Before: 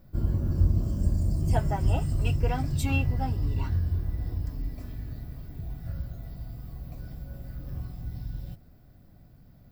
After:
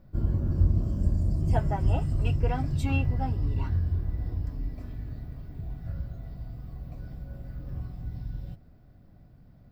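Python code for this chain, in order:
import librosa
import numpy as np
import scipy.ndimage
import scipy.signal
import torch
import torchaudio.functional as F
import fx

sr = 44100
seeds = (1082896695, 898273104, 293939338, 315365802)

y = fx.lowpass(x, sr, hz=2700.0, slope=6)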